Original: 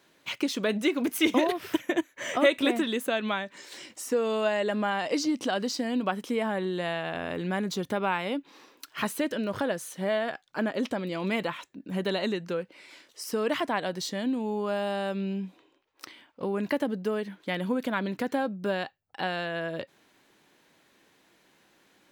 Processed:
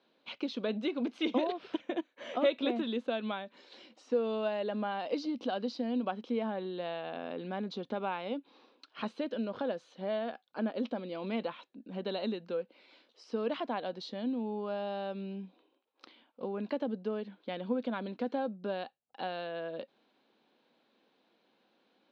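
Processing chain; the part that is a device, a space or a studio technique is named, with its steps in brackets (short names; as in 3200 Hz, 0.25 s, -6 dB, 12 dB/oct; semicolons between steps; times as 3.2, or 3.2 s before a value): kitchen radio (speaker cabinet 210–4300 Hz, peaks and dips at 230 Hz +9 dB, 500 Hz +6 dB, 750 Hz +4 dB, 1900 Hz -8 dB, 4000 Hz +4 dB); gain -9 dB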